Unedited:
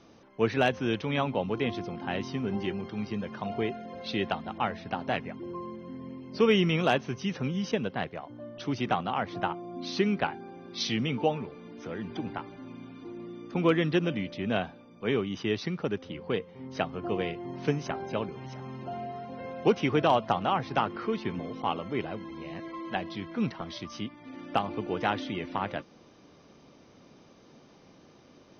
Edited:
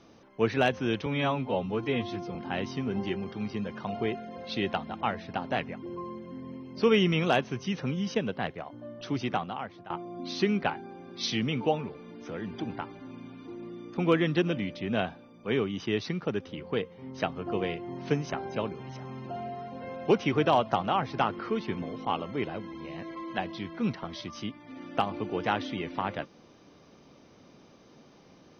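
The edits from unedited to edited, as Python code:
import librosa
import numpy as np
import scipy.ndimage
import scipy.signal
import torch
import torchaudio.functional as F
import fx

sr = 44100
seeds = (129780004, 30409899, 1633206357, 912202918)

y = fx.edit(x, sr, fx.stretch_span(start_s=1.06, length_s=0.86, factor=1.5),
    fx.fade_out_to(start_s=8.75, length_s=0.72, floor_db=-20.0), tone=tone)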